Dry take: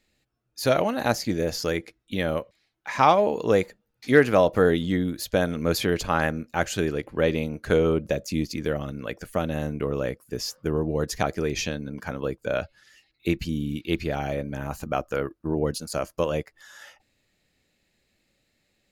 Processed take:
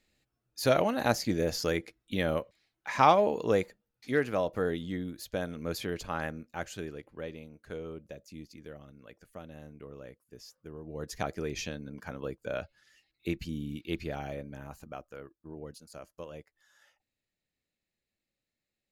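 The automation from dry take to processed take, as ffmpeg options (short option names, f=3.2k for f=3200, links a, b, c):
-af "volume=7.5dB,afade=t=out:st=3.09:d=1.06:silence=0.421697,afade=t=out:st=6.37:d=1.03:silence=0.375837,afade=t=in:st=10.82:d=0.4:silence=0.281838,afade=t=out:st=14.09:d=1:silence=0.316228"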